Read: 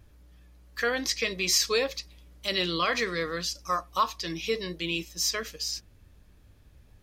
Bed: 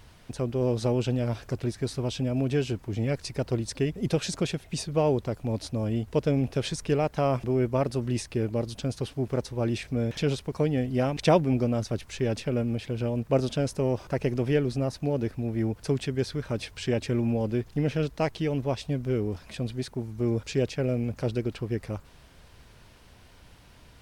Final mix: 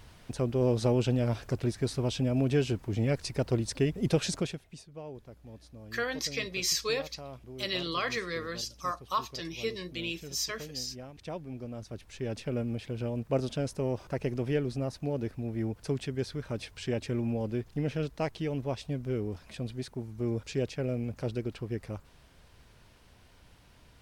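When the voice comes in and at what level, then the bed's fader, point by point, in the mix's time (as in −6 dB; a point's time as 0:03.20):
5.15 s, −5.0 dB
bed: 0:04.33 −0.5 dB
0:04.86 −19.5 dB
0:11.26 −19.5 dB
0:12.50 −5 dB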